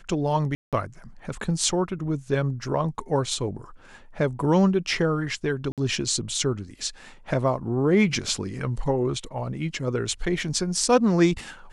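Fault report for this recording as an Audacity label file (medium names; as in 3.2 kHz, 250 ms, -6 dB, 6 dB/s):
0.550000	0.730000	dropout 177 ms
5.720000	5.780000	dropout 57 ms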